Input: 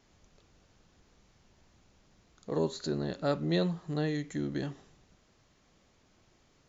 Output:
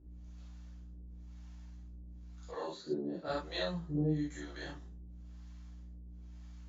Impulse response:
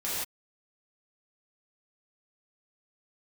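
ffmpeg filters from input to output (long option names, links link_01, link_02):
-filter_complex "[0:a]acrossover=split=540[link_01][link_02];[link_01]aeval=exprs='val(0)*(1-1/2+1/2*cos(2*PI*1*n/s))':channel_layout=same[link_03];[link_02]aeval=exprs='val(0)*(1-1/2-1/2*cos(2*PI*1*n/s))':channel_layout=same[link_04];[link_03][link_04]amix=inputs=2:normalize=0,aeval=exprs='val(0)+0.00251*(sin(2*PI*60*n/s)+sin(2*PI*2*60*n/s)/2+sin(2*PI*3*60*n/s)/3+sin(2*PI*4*60*n/s)/4+sin(2*PI*5*60*n/s)/5)':channel_layout=same,asettb=1/sr,asplit=3[link_05][link_06][link_07];[link_05]atrim=end=2.494[link_08];[link_06]atrim=start=2.49:end=3.28,asetpts=PTS-STARTPTS,afade=type=in:duration=0.004:curve=qsin,afade=type=out:start_time=0.786:duration=0.004:curve=qsin,highpass=230,lowpass=5300[link_09];[link_07]atrim=start=3.276[link_10];[link_08][link_09]acrossfade=duration=0.004:curve1=hsin:curve2=qsin[link_11];[link_11][link_10]acrossfade=duration=0.004:curve1=qsin:curve2=hsin[link_12];[1:a]atrim=start_sample=2205,afade=type=out:start_time=0.2:duration=0.01,atrim=end_sample=9261,asetrate=83790,aresample=44100[link_13];[link_12][link_13]afir=irnorm=-1:irlink=0"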